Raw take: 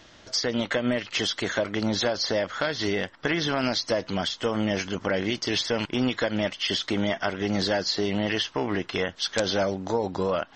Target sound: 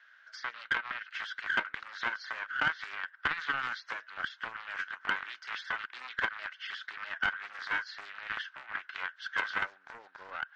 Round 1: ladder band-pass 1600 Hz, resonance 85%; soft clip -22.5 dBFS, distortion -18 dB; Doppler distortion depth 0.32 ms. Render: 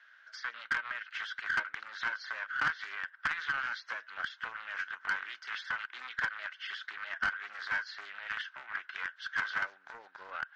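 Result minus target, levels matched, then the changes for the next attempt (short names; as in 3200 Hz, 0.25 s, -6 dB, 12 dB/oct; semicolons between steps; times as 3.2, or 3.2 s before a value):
soft clip: distortion +13 dB
change: soft clip -14.5 dBFS, distortion -30 dB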